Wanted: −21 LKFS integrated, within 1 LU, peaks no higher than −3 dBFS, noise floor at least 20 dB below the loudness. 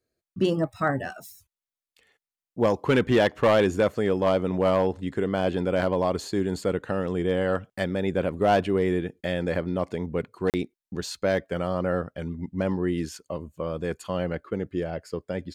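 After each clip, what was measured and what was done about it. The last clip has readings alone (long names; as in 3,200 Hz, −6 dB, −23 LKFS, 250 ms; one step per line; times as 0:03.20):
share of clipped samples 0.2%; peaks flattened at −13.5 dBFS; number of dropouts 1; longest dropout 38 ms; integrated loudness −26.5 LKFS; sample peak −13.5 dBFS; target loudness −21.0 LKFS
→ clipped peaks rebuilt −13.5 dBFS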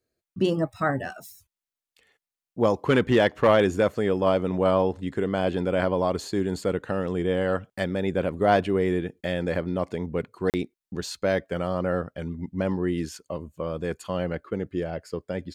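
share of clipped samples 0.0%; number of dropouts 1; longest dropout 38 ms
→ repair the gap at 0:10.50, 38 ms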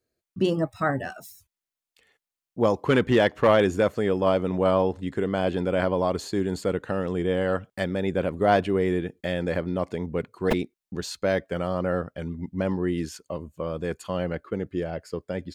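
number of dropouts 0; integrated loudness −26.0 LKFS; sample peak −6.5 dBFS; target loudness −21.0 LKFS
→ level +5 dB
brickwall limiter −3 dBFS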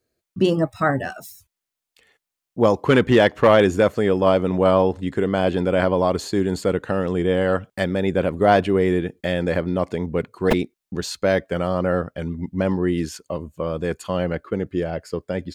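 integrated loudness −21.0 LKFS; sample peak −3.0 dBFS; background noise floor −85 dBFS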